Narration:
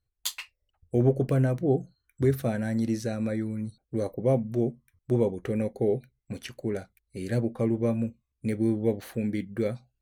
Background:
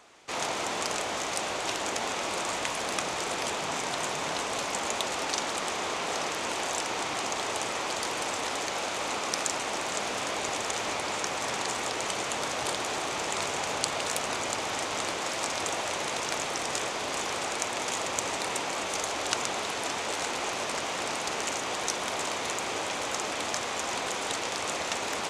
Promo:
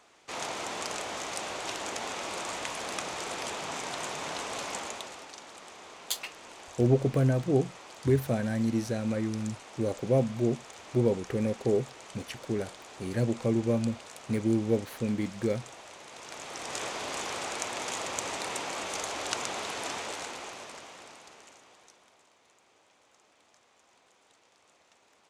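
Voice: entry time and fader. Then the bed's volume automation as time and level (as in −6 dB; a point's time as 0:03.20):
5.85 s, −1.0 dB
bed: 0:04.75 −4.5 dB
0:05.32 −16.5 dB
0:16.07 −16.5 dB
0:16.84 −3.5 dB
0:19.95 −3.5 dB
0:22.28 −32.5 dB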